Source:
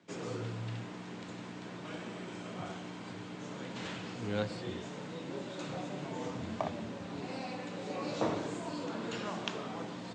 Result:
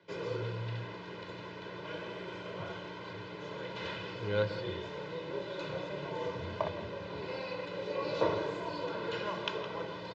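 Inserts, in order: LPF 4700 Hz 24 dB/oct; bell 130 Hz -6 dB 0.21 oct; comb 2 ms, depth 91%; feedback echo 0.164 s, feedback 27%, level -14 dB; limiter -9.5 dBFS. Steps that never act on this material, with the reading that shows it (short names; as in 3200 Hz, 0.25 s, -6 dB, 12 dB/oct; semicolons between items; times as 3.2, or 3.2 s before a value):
limiter -9.5 dBFS: input peak -16.5 dBFS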